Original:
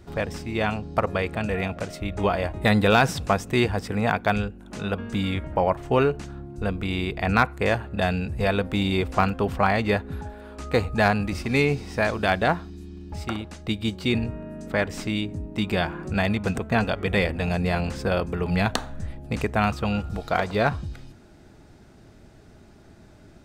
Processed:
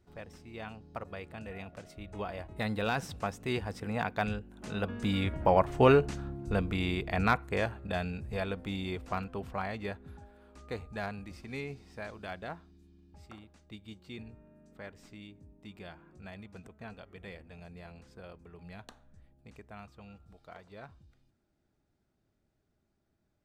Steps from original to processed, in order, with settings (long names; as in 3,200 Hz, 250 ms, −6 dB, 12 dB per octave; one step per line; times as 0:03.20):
source passing by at 0:05.96, 7 m/s, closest 5.3 metres
level −1 dB